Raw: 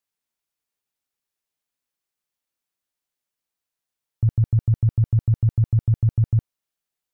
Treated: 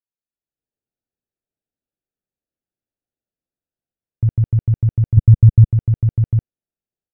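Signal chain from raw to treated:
adaptive Wiener filter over 41 samples
automatic gain control gain up to 13.5 dB
0:05.17–0:05.71: low-shelf EQ 190 Hz +11 dB
level −8 dB

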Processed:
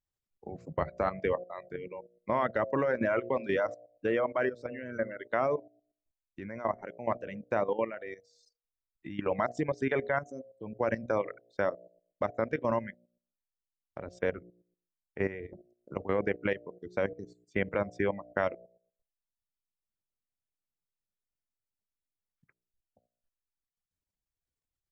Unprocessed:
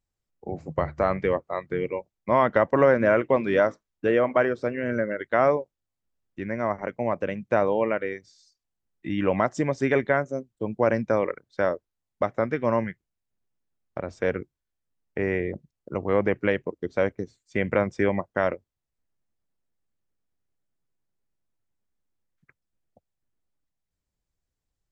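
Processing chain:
reverb reduction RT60 1 s
hum removal 59.68 Hz, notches 12
output level in coarse steps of 13 dB
level −1.5 dB

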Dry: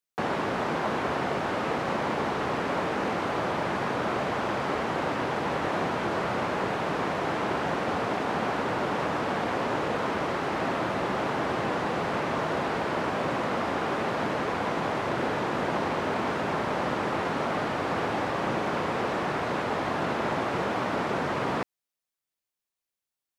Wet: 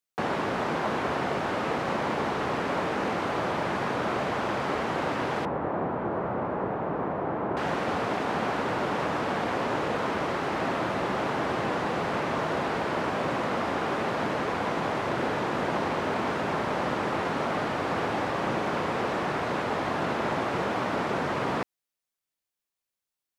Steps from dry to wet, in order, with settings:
0:05.45–0:07.57: low-pass filter 1,100 Hz 12 dB per octave

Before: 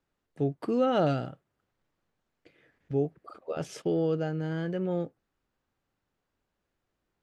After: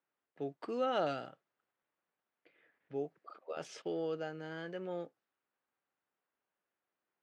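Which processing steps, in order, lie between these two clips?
meter weighting curve A
low-pass that shuts in the quiet parts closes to 2,700 Hz, open at −31.5 dBFS
level −5 dB

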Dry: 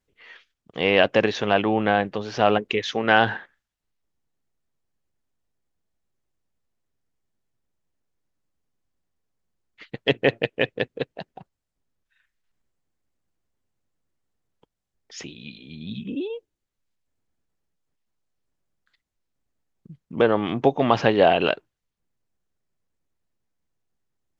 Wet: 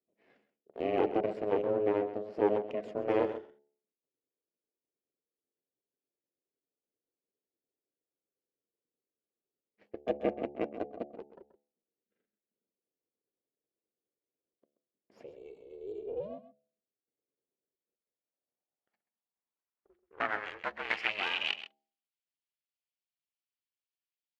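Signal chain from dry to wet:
lower of the sound and its delayed copy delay 0.4 ms
ring modulation 210 Hz
hum removal 72.08 Hz, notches 12
band-pass filter sweep 450 Hz → 3,300 Hz, 0:17.80–0:21.70
single-tap delay 131 ms −13 dB

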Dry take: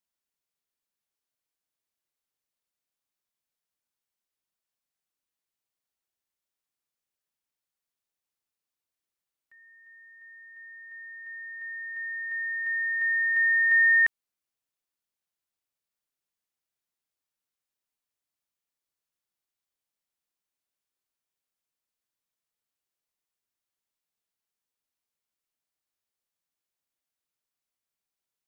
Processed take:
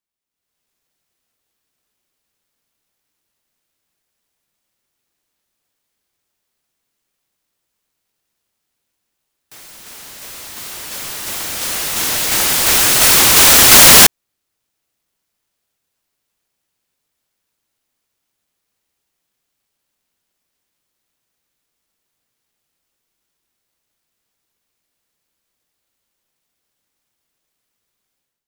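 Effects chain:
automatic gain control gain up to 15 dB
short delay modulated by noise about 3,100 Hz, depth 0.31 ms
level +1.5 dB

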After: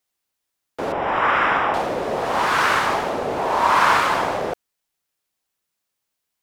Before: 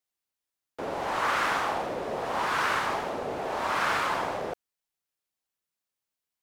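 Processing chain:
0:00.92–0:01.74: Savitzky-Golay smoothing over 25 samples
0:03.36–0:04.00: parametric band 990 Hz +8.5 dB 0.3 octaves
level +8.5 dB

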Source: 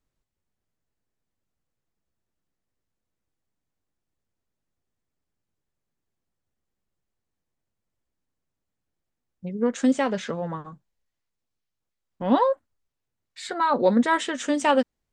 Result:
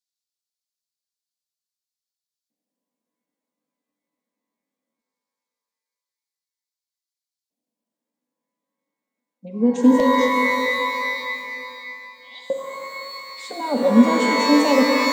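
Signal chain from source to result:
parametric band 240 Hz +8.5 dB 1.3 octaves
auto-filter high-pass square 0.2 Hz 310–4,400 Hz
phaser with its sweep stopped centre 360 Hz, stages 6
reverb with rising layers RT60 2.7 s, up +12 semitones, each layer −2 dB, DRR 2.5 dB
level −2.5 dB

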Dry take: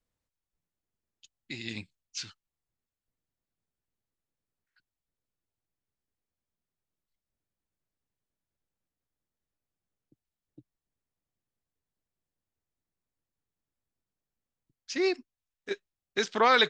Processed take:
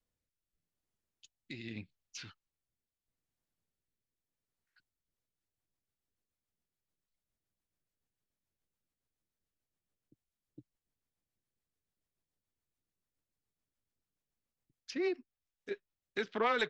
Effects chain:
phase distortion by the signal itself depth 0.067 ms
in parallel at +0.5 dB: downward compressor, threshold −36 dBFS, peak gain reduction 17 dB
on the sum: rotating-speaker cabinet horn 0.8 Hz, later 7 Hz, at 0:04.76
treble cut that deepens with the level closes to 2,700 Hz, closed at −33.5 dBFS
level −6.5 dB

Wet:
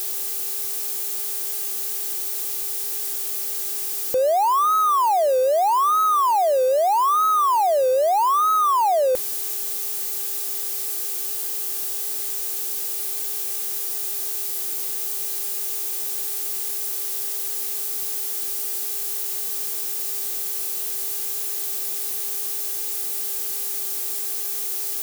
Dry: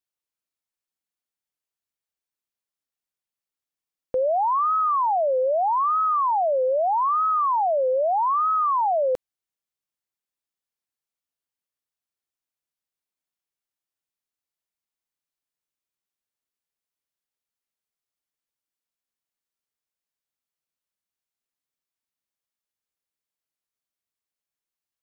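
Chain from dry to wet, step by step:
spike at every zero crossing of −24.5 dBFS
hum with harmonics 400 Hz, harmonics 7, −50 dBFS −6 dB per octave
level +3 dB

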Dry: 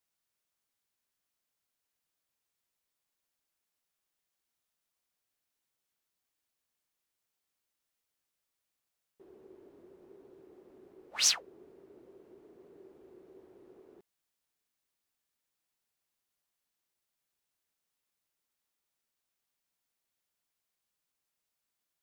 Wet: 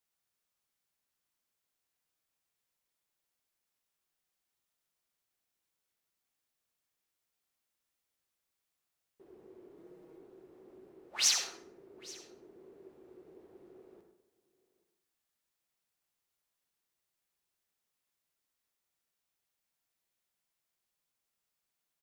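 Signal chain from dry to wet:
0:09.77–0:10.18: comb filter 6.3 ms, depth 75%
single-tap delay 832 ms −21.5 dB
on a send at −4 dB: convolution reverb RT60 0.65 s, pre-delay 48 ms
on the sum: level −1.5 dB

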